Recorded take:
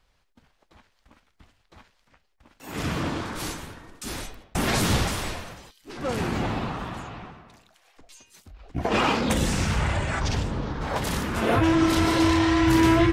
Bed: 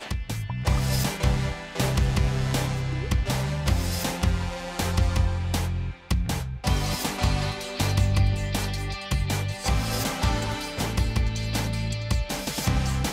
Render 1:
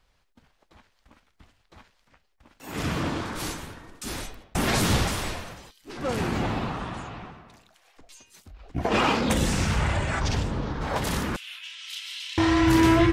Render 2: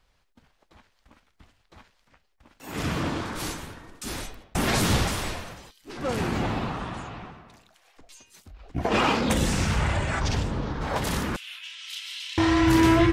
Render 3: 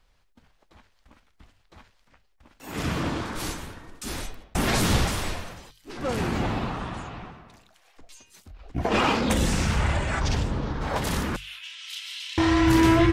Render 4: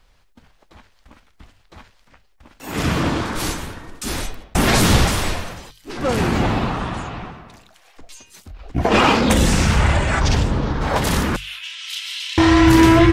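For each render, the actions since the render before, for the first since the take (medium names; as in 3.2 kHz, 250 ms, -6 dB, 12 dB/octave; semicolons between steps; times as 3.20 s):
6.79–7.20 s: brick-wall FIR low-pass 11 kHz; 11.36–12.38 s: ladder high-pass 2.6 kHz, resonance 55%
no audible change
bass shelf 63 Hz +5.5 dB; hum notches 50/100/150 Hz
trim +8 dB; peak limiter -3 dBFS, peak gain reduction 2 dB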